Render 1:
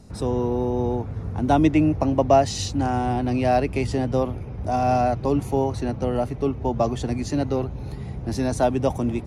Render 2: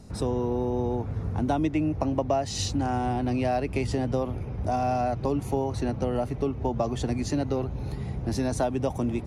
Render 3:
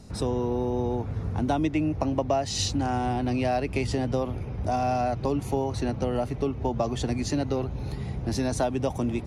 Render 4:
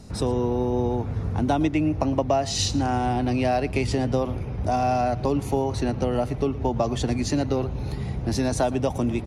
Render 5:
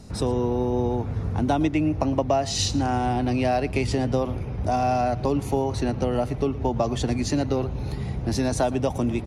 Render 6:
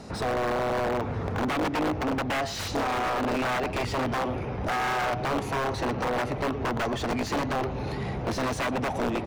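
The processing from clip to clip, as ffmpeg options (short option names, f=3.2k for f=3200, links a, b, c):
-af "acompressor=threshold=-23dB:ratio=4"
-af "equalizer=f=3.9k:t=o:w=2.1:g=3.5"
-af "aecho=1:1:114:0.106,volume=3dB"
-af anull
-filter_complex "[0:a]aeval=exprs='(mod(7.5*val(0)+1,2)-1)/7.5':c=same,asplit=2[a][b];[b]highpass=f=720:p=1,volume=22dB,asoftclip=type=tanh:threshold=-17.5dB[c];[a][c]amix=inputs=2:normalize=0,lowpass=f=1.6k:p=1,volume=-6dB,volume=-3.5dB"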